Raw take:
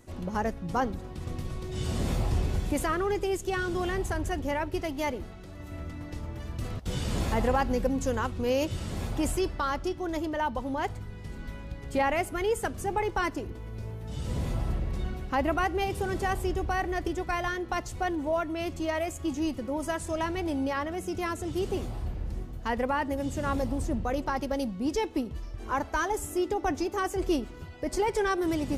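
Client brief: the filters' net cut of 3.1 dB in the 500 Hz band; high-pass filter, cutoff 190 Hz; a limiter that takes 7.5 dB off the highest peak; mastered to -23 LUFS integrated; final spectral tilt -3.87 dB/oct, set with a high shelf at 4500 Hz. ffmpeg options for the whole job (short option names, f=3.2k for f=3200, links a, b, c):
-af "highpass=190,equalizer=f=500:t=o:g=-4,highshelf=f=4.5k:g=4,volume=11.5dB,alimiter=limit=-12dB:level=0:latency=1"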